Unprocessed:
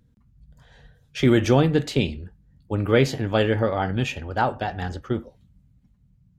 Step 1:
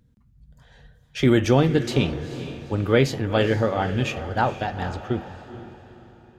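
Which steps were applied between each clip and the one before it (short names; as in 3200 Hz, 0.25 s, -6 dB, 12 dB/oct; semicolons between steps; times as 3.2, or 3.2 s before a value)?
diffused feedback echo 0.455 s, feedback 42%, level -12 dB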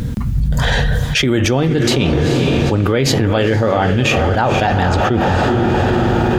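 fast leveller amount 100%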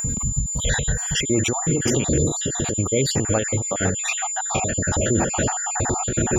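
random spectral dropouts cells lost 54%; whine 7100 Hz -20 dBFS; ending taper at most 100 dB/s; gain -4.5 dB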